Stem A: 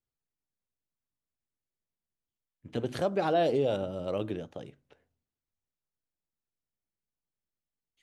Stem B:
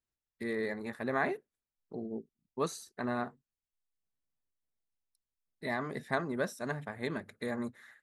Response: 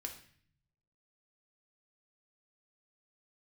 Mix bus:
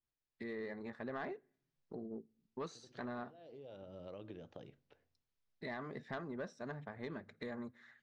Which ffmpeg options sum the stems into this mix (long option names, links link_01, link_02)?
-filter_complex "[0:a]acompressor=threshold=-33dB:ratio=6,volume=-7dB,asplit=2[link_01][link_02];[link_02]volume=-20.5dB[link_03];[1:a]dynaudnorm=framelen=110:gausssize=7:maxgain=7.5dB,asoftclip=type=tanh:threshold=-16.5dB,adynamicequalizer=threshold=0.00891:dfrequency=1500:dqfactor=0.7:tfrequency=1500:tqfactor=0.7:attack=5:release=100:ratio=0.375:range=3:mode=cutabove:tftype=highshelf,volume=-6dB,asplit=3[link_04][link_05][link_06];[link_05]volume=-21.5dB[link_07];[link_06]apad=whole_len=354072[link_08];[link_01][link_08]sidechaincompress=threshold=-49dB:ratio=4:attack=16:release=734[link_09];[2:a]atrim=start_sample=2205[link_10];[link_03][link_07]amix=inputs=2:normalize=0[link_11];[link_11][link_10]afir=irnorm=-1:irlink=0[link_12];[link_09][link_04][link_12]amix=inputs=3:normalize=0,lowpass=frequency=5800:width=0.5412,lowpass=frequency=5800:width=1.3066,acompressor=threshold=-49dB:ratio=2"